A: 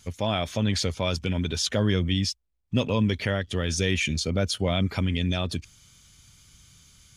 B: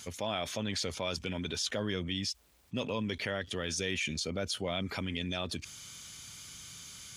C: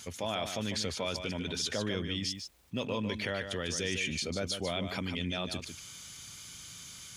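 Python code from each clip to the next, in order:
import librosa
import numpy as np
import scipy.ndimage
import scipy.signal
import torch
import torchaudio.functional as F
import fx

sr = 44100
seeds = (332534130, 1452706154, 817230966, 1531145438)

y1 = fx.highpass(x, sr, hz=130.0, slope=6)
y1 = fx.low_shelf(y1, sr, hz=210.0, db=-7.0)
y1 = fx.env_flatten(y1, sr, amount_pct=50)
y1 = y1 * 10.0 ** (-8.0 / 20.0)
y2 = y1 + 10.0 ** (-8.0 / 20.0) * np.pad(y1, (int(149 * sr / 1000.0), 0))[:len(y1)]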